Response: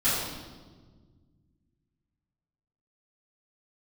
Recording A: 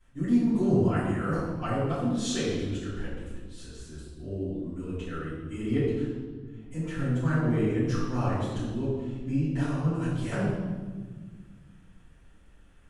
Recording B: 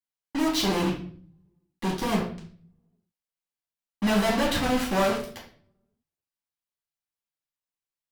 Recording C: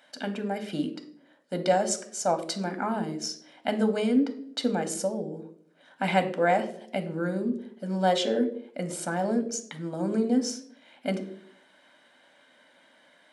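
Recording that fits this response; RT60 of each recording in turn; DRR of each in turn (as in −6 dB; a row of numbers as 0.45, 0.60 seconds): A; 1.5, 0.50, 0.65 seconds; −14.5, −5.5, 7.5 decibels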